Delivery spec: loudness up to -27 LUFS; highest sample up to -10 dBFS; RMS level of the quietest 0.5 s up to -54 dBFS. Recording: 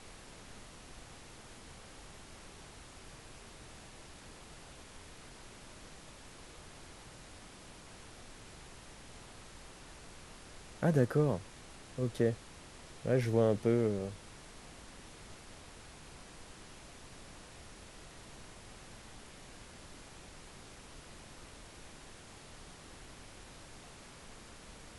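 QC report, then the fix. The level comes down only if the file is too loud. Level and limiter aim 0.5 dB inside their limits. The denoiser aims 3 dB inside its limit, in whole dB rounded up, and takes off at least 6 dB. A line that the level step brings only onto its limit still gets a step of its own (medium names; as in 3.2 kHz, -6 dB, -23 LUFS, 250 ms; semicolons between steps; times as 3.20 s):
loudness -32.5 LUFS: pass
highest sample -16.0 dBFS: pass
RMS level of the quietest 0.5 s -53 dBFS: fail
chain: noise reduction 6 dB, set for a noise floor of -53 dBFS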